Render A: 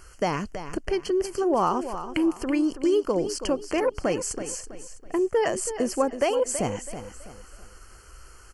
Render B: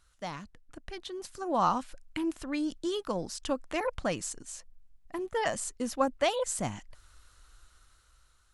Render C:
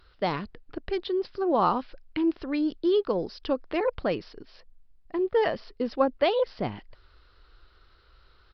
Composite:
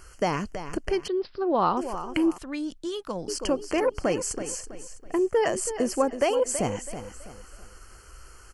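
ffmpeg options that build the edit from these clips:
-filter_complex "[0:a]asplit=3[s0][s1][s2];[s0]atrim=end=1.082[s3];[2:a]atrim=start=1.078:end=1.772[s4];[s1]atrim=start=1.768:end=2.382[s5];[1:a]atrim=start=2.378:end=3.282[s6];[s2]atrim=start=3.278[s7];[s3][s4]acrossfade=d=0.004:c1=hsin:c2=hsin[s8];[s8][s5]acrossfade=d=0.004:c1=hsin:c2=hsin[s9];[s9][s6]acrossfade=d=0.004:c1=hsin:c2=hsin[s10];[s10][s7]acrossfade=d=0.004:c1=hsin:c2=hsin"

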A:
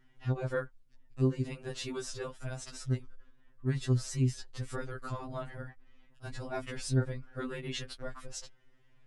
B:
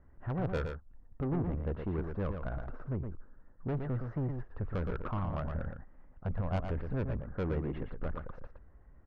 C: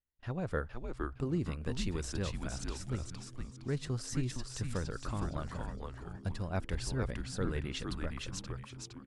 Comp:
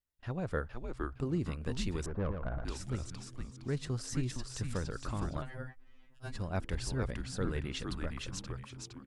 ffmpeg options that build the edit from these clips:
-filter_complex "[2:a]asplit=3[s0][s1][s2];[s0]atrim=end=2.062[s3];[1:a]atrim=start=2.058:end=2.652[s4];[s1]atrim=start=2.648:end=5.422[s5];[0:a]atrim=start=5.418:end=6.352[s6];[s2]atrim=start=6.348[s7];[s3][s4]acrossfade=d=0.004:c1=hsin:c2=hsin[s8];[s8][s5]acrossfade=d=0.004:c1=hsin:c2=hsin[s9];[s9][s6]acrossfade=d=0.004:c1=hsin:c2=hsin[s10];[s10][s7]acrossfade=d=0.004:c1=hsin:c2=hsin"

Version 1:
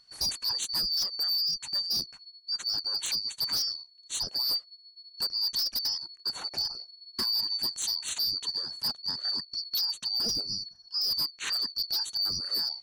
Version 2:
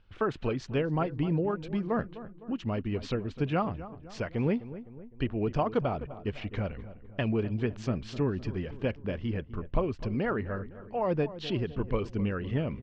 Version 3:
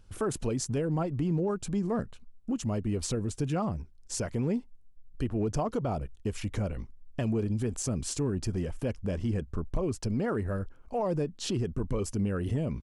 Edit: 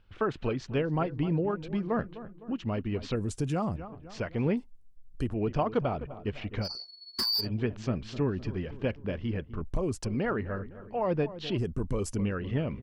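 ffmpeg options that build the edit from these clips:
-filter_complex "[2:a]asplit=4[s0][s1][s2][s3];[1:a]asplit=6[s4][s5][s6][s7][s8][s9];[s4]atrim=end=3.162[s10];[s0]atrim=start=3.158:end=3.762[s11];[s5]atrim=start=3.758:end=4.572[s12];[s1]atrim=start=4.568:end=5.342[s13];[s6]atrim=start=5.338:end=6.71[s14];[0:a]atrim=start=6.61:end=7.48[s15];[s7]atrim=start=7.38:end=9.612[s16];[s2]atrim=start=9.608:end=10.052[s17];[s8]atrim=start=10.048:end=11.582[s18];[s3]atrim=start=11.578:end=12.162[s19];[s9]atrim=start=12.158[s20];[s10][s11]acrossfade=d=0.004:c1=hsin:c2=hsin[s21];[s21][s12]acrossfade=d=0.004:c1=hsin:c2=hsin[s22];[s22][s13]acrossfade=d=0.004:c1=hsin:c2=hsin[s23];[s23][s14]acrossfade=d=0.004:c1=hsin:c2=hsin[s24];[s24][s15]acrossfade=d=0.1:c1=tri:c2=tri[s25];[s25][s16]acrossfade=d=0.1:c1=tri:c2=tri[s26];[s26][s17]acrossfade=d=0.004:c1=hsin:c2=hsin[s27];[s27][s18]acrossfade=d=0.004:c1=hsin:c2=hsin[s28];[s28][s19]acrossfade=d=0.004:c1=hsin:c2=hsin[s29];[s29][s20]acrossfade=d=0.004:c1=hsin:c2=hsin"

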